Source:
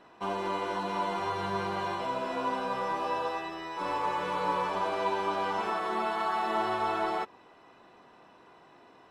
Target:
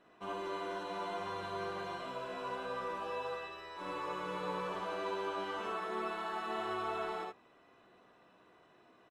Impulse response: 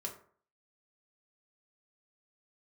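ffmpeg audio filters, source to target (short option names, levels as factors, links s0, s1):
-filter_complex "[0:a]superequalizer=9b=0.562:14b=0.631,asplit=2[s0][s1];[s1]aecho=0:1:59|75:0.631|0.562[s2];[s0][s2]amix=inputs=2:normalize=0,volume=0.355"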